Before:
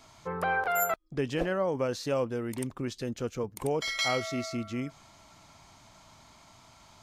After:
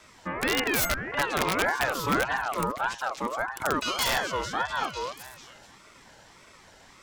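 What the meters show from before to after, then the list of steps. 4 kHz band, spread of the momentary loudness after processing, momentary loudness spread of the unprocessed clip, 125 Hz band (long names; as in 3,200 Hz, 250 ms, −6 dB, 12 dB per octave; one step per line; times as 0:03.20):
+6.0 dB, 9 LU, 8 LU, −2.0 dB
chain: wrap-around overflow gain 20.5 dB
echo through a band-pass that steps 237 ms, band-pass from 230 Hz, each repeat 1.4 octaves, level −1 dB
ring modulator whose carrier an LFO sweeps 1,000 Hz, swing 30%, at 1.7 Hz
level +5 dB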